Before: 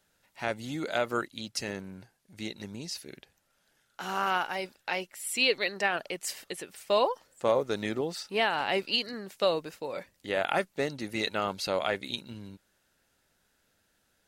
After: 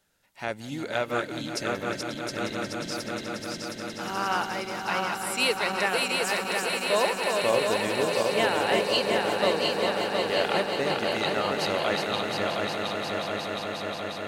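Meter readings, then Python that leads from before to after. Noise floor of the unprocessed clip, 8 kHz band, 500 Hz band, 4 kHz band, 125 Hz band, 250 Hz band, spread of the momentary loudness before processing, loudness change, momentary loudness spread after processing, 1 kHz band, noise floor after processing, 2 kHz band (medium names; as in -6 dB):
-73 dBFS, +5.0 dB, +5.0 dB, +5.0 dB, +5.5 dB, +5.0 dB, 14 LU, +4.0 dB, 9 LU, +5.0 dB, -39 dBFS, +5.0 dB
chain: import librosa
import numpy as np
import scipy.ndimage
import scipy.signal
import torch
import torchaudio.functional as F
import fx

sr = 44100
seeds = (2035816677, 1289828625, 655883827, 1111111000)

y = fx.reverse_delay_fb(x, sr, ms=358, feedback_pct=64, wet_db=-4)
y = fx.echo_swell(y, sr, ms=179, loudest=5, wet_db=-14)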